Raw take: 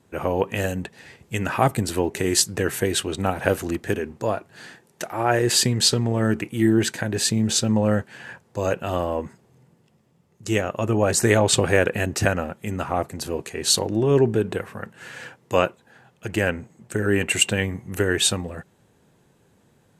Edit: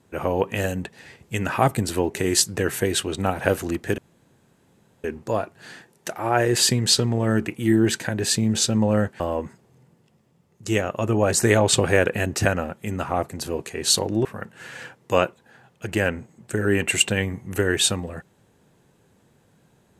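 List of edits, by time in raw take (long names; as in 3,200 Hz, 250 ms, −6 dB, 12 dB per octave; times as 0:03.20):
0:03.98: splice in room tone 1.06 s
0:08.14–0:09.00: remove
0:14.05–0:14.66: remove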